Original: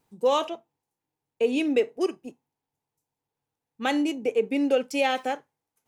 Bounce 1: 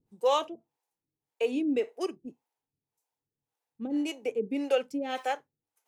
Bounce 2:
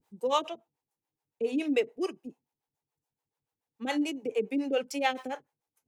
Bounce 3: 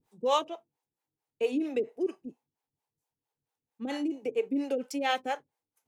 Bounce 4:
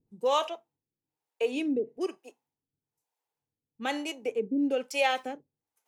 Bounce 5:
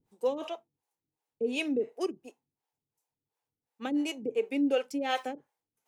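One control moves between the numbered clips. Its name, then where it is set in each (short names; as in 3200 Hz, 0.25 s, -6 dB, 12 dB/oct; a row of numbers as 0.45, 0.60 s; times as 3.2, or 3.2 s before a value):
harmonic tremolo, rate: 1.8, 7, 4.4, 1.1, 2.8 Hz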